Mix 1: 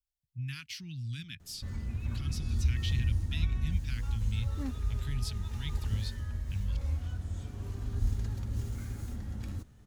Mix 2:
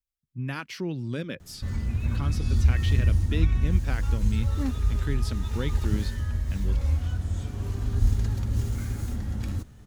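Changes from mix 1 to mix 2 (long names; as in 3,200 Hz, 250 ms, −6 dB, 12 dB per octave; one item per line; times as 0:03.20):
speech: remove Chebyshev band-stop filter 100–3,100 Hz, order 2
background +8.0 dB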